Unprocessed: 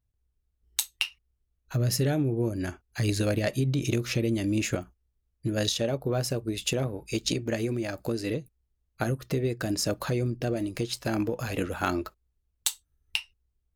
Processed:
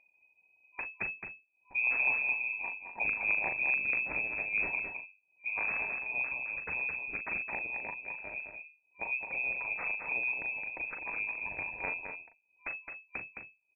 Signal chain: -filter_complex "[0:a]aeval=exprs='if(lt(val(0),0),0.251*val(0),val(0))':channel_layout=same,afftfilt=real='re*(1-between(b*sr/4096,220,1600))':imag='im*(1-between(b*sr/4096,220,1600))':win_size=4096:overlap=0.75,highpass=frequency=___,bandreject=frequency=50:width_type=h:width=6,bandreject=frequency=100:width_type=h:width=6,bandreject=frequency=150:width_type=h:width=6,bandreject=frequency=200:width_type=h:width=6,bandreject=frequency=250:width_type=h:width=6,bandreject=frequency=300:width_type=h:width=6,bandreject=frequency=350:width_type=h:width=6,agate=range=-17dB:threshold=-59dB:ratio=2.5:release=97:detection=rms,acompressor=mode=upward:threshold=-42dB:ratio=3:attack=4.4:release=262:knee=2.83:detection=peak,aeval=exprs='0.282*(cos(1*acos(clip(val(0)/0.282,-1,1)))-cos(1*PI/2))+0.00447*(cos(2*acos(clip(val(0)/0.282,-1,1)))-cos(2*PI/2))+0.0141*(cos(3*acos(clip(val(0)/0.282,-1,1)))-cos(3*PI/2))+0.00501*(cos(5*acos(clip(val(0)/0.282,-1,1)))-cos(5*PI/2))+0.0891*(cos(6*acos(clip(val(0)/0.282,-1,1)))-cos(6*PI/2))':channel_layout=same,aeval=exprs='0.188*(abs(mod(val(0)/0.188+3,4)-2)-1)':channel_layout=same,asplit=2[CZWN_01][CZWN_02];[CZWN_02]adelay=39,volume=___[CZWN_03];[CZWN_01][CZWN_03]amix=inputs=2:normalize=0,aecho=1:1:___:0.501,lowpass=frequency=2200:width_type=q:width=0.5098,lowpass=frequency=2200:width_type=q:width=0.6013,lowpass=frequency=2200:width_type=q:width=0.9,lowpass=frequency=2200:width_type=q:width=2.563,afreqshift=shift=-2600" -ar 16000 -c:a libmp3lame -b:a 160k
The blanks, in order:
100, -7dB, 215